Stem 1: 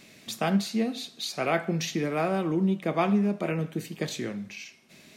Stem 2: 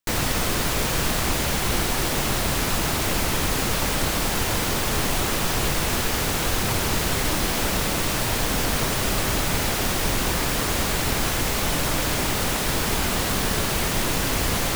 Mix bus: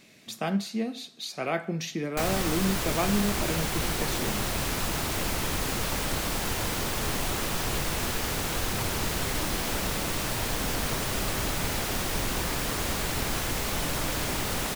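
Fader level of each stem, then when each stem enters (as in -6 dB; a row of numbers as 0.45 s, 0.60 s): -3.0 dB, -6.0 dB; 0.00 s, 2.10 s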